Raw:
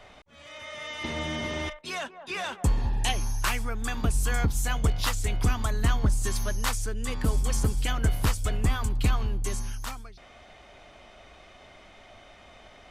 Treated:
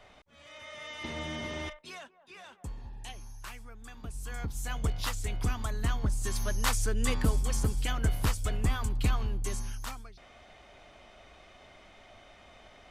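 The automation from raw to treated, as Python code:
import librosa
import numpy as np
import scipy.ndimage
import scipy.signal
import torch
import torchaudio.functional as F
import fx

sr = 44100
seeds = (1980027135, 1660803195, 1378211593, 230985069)

y = fx.gain(x, sr, db=fx.line((1.73, -5.5), (2.18, -17.0), (3.99, -17.0), (4.82, -6.0), (6.11, -6.0), (7.06, 3.5), (7.39, -3.5)))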